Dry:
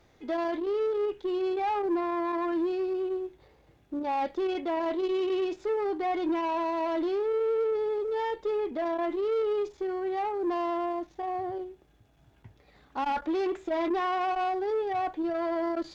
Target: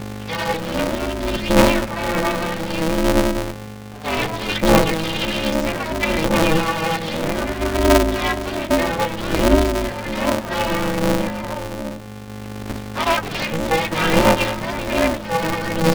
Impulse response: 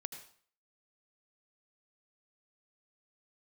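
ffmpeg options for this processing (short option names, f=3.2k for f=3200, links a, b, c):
-filter_complex "[0:a]acrossover=split=530[a][b];[a]adelay=250[c];[c][b]amix=inputs=2:normalize=0,asplit=3[d][e][f];[e]asetrate=22050,aresample=44100,atempo=2,volume=-3dB[g];[f]asetrate=52444,aresample=44100,atempo=0.840896,volume=-9dB[h];[d][g][h]amix=inputs=3:normalize=0,aeval=exprs='val(0)+0.00501*(sin(2*PI*50*n/s)+sin(2*PI*2*50*n/s)/2+sin(2*PI*3*50*n/s)/3+sin(2*PI*4*50*n/s)/4+sin(2*PI*5*50*n/s)/5)':c=same,asplit=2[i][j];[1:a]atrim=start_sample=2205,lowpass=1.2k[k];[j][k]afir=irnorm=-1:irlink=0,volume=-1.5dB[l];[i][l]amix=inputs=2:normalize=0,aphaser=in_gain=1:out_gain=1:delay=2.3:decay=0.68:speed=0.63:type=triangular,highshelf=f=1.5k:t=q:w=1.5:g=10,aeval=exprs='val(0)*sgn(sin(2*PI*160*n/s))':c=same,volume=4dB"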